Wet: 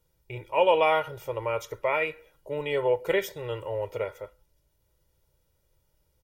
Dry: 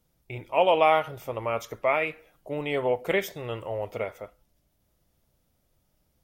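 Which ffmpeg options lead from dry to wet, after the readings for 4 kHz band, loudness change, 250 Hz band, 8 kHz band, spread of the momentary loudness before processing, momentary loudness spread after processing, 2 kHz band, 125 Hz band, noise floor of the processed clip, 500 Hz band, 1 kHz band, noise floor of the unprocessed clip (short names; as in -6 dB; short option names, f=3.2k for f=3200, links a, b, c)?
-0.5 dB, -0.5 dB, -3.5 dB, -0.5 dB, 15 LU, 14 LU, -0.5 dB, -1.5 dB, -72 dBFS, 0.0 dB, -2.0 dB, -72 dBFS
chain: -af "aecho=1:1:2.1:0.72,volume=-2.5dB"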